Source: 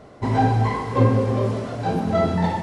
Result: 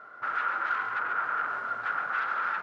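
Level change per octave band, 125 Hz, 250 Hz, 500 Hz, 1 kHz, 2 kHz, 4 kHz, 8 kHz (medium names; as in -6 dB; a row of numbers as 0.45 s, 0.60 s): under -40 dB, -33.0 dB, -24.0 dB, -5.0 dB, +6.0 dB, -10.5 dB, no reading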